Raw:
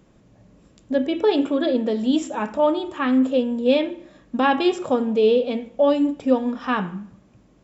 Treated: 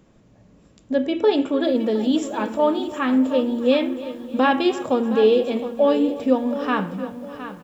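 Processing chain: feedback delay 302 ms, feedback 52%, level -17.5 dB; on a send at -18 dB: reverberation RT60 0.45 s, pre-delay 4 ms; on the sum: bit-crushed delay 715 ms, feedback 35%, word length 8-bit, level -12 dB

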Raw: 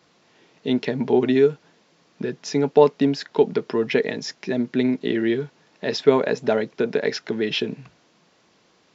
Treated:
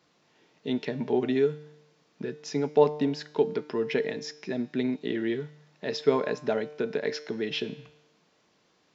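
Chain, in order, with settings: feedback comb 150 Hz, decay 0.85 s, harmonics all, mix 60%

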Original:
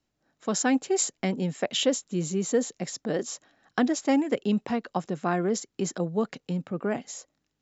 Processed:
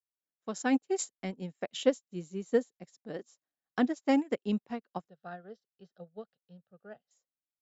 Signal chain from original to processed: 5.09–7.11 s: static phaser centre 1.5 kHz, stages 8; upward expansion 2.5:1, over -42 dBFS

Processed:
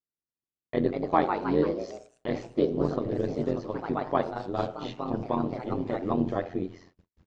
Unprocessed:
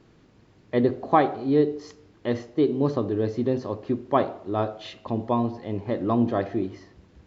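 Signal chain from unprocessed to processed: de-hum 58.18 Hz, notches 3; gate -49 dBFS, range -44 dB; AM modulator 87 Hz, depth 80%; ever faster or slower copies 274 ms, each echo +2 st, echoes 3, each echo -6 dB; trim -1 dB

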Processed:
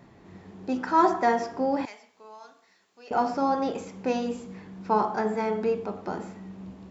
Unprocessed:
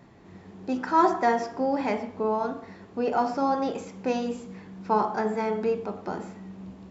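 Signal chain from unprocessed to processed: 1.85–3.11 s: differentiator

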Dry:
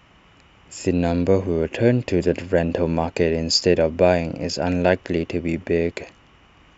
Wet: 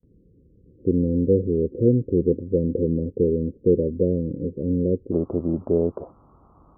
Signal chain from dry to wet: steep low-pass 510 Hz 96 dB/octave, from 5.11 s 1.3 kHz; gate with hold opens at -52 dBFS

